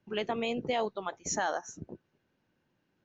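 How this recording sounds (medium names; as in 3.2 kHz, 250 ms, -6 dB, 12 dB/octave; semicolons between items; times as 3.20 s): noise floor -78 dBFS; spectral tilt -3.0 dB/octave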